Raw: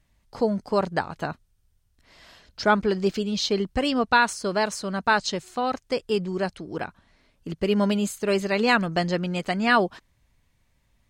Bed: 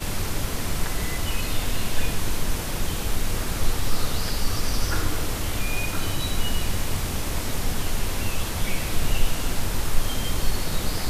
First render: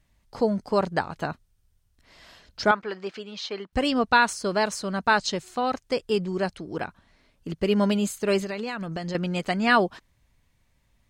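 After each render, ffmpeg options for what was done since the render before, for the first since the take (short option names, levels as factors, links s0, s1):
-filter_complex "[0:a]asettb=1/sr,asplit=3[s0][s1][s2];[s0]atrim=end=2.714[s3];[s1]atrim=start=2.71:end=3.73,asetpts=PTS-STARTPTS,afade=t=in:d=0.004:c=qsin,afade=t=out:st=1.016:d=0.004:c=qsin,bandpass=f=1400:t=q:w=0.85[s4];[s2]atrim=start=3.726[s5];[s3][s4]acrossfade=d=0.004:c1=hsin:c2=qsin[s6];[s6][s5]acrossfade=d=0.004:c1=qsin:c2=hsin,asettb=1/sr,asplit=3[s7][s8][s9];[s7]atrim=end=8.434[s10];[s8]atrim=start=8.43:end=9.15,asetpts=PTS-STARTPTS,afade=t=in:d=0.004:c=qsin,afade=t=out:st=0.716:d=0.004:c=qsin,acompressor=threshold=0.0447:ratio=12:attack=3.2:release=140:knee=1:detection=peak[s11];[s9]atrim=start=9.146[s12];[s10][s11]acrossfade=d=0.004:c1=hsin:c2=qsin[s13];[s13][s12]acrossfade=d=0.004:c1=qsin:c2=hsin"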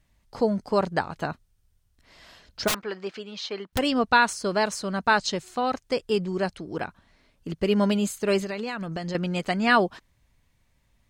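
-filter_complex "[0:a]asplit=3[s0][s1][s2];[s0]afade=t=out:st=2.67:d=0.02[s3];[s1]aeval=exprs='(mod(8.91*val(0)+1,2)-1)/8.91':c=same,afade=t=in:st=2.67:d=0.02,afade=t=out:st=3.77:d=0.02[s4];[s2]afade=t=in:st=3.77:d=0.02[s5];[s3][s4][s5]amix=inputs=3:normalize=0"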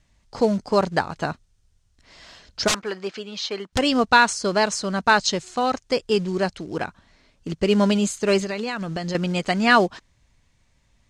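-filter_complex "[0:a]asplit=2[s0][s1];[s1]acrusher=bits=4:mode=log:mix=0:aa=0.000001,volume=0.501[s2];[s0][s2]amix=inputs=2:normalize=0,lowpass=f=7000:t=q:w=1.5"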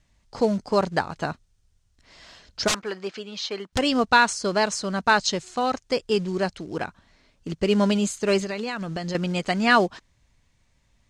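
-af "volume=0.794"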